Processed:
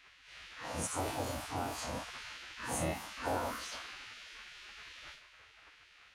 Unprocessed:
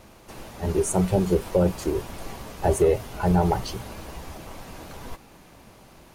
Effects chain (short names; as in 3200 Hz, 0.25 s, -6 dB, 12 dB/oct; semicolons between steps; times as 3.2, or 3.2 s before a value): time blur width 84 ms; on a send: darkening echo 76 ms, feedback 82%, low-pass 1600 Hz, level -20 dB; on the sum: low-pass opened by the level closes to 2800 Hz, open at -19.5 dBFS; HPF 140 Hz 12 dB/oct; in parallel at +1.5 dB: compressor, threshold -35 dBFS, peak gain reduction 16.5 dB; on the sum: spectral gate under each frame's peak -15 dB weak; gain -2.5 dB